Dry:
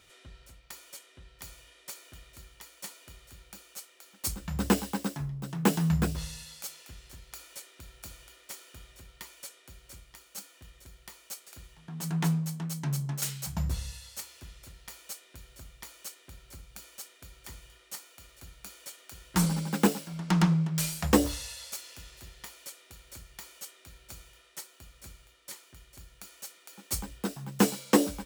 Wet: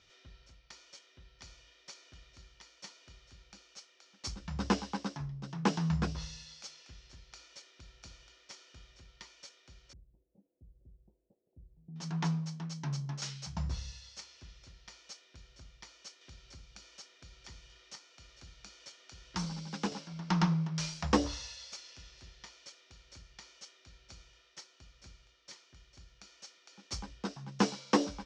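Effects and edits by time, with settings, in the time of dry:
9.93–11.96 s: Gaussian low-pass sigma 19 samples
16.21–19.92 s: three bands compressed up and down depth 40%
whole clip: dynamic bell 1 kHz, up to +6 dB, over -50 dBFS, Q 1.3; Chebyshev low-pass 5.8 kHz, order 4; tone controls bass +2 dB, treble +7 dB; trim -6 dB

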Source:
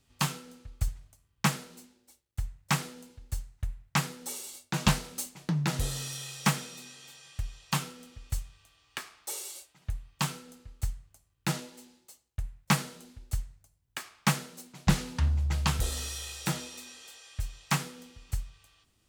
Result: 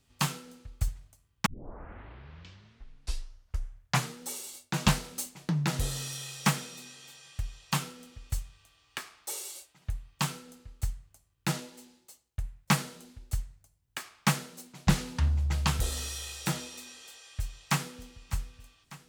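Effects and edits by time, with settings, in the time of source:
1.46 s: tape start 2.78 s
17.21–18.14 s: echo throw 600 ms, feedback 70%, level -17 dB

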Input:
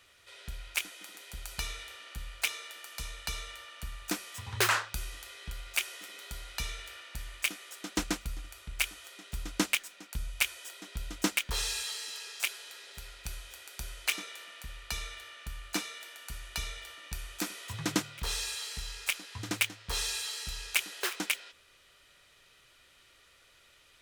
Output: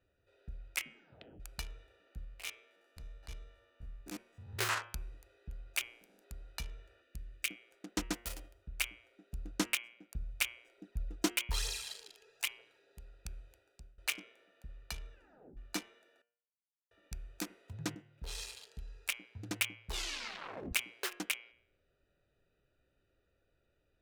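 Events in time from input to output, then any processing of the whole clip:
0.74 s: tape stop 0.66 s
2.24–4.78 s: spectrogram pixelated in time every 50 ms
5.81–6.23 s: spectral peaks clipped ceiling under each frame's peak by 26 dB
7.02–7.50 s: peaking EQ 900 Hz -12.5 dB
8.13–8.61 s: formants flattened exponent 0.3
10.78–12.79 s: phaser 1.1 Hz
13.52–13.98 s: fade out, to -22 dB
15.12 s: tape stop 0.45 s
16.22–16.91 s: mute
17.95–18.40 s: fade in linear, from -18 dB
19.85 s: tape stop 0.88 s
whole clip: local Wiener filter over 41 samples; de-hum 118 Hz, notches 28; trim -4 dB

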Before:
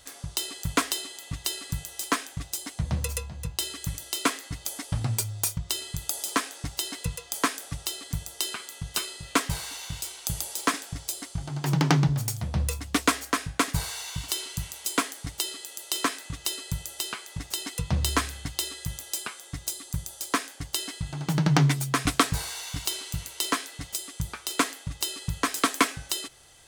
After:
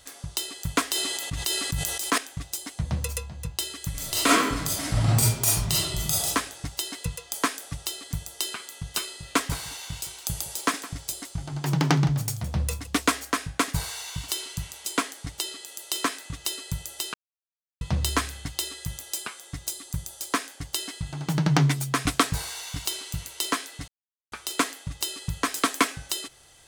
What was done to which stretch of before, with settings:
0.90–2.18 s: decay stretcher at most 27 dB/s
3.92–6.26 s: reverb throw, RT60 0.93 s, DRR -8 dB
9.12–12.87 s: delay 164 ms -16.5 dB
14.54–15.68 s: treble shelf 12 kHz -6.5 dB
17.14–17.81 s: mute
23.88–24.32 s: mute

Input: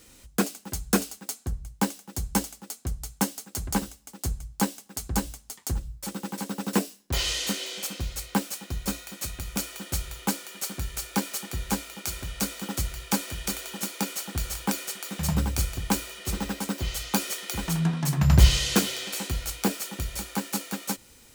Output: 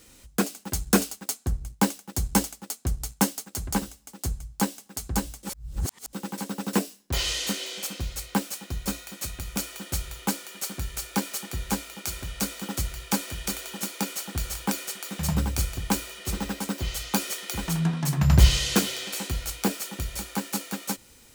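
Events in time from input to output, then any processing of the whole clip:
0.63–3.54 s: waveshaping leveller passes 1
5.43–6.13 s: reverse

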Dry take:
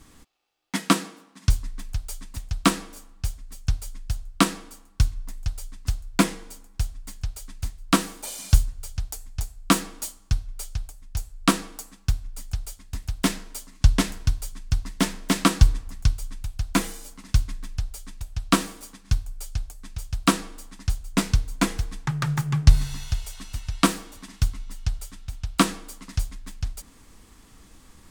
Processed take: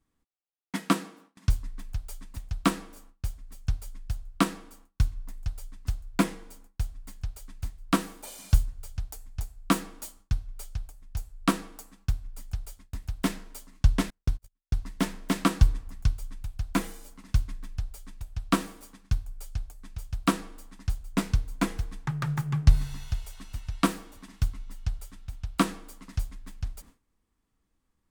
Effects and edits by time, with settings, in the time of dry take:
14.10–14.77 s: gate -28 dBFS, range -38 dB
whole clip: gate with hold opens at -37 dBFS; peaking EQ 6.3 kHz -6 dB 2.4 oct; trim -4 dB

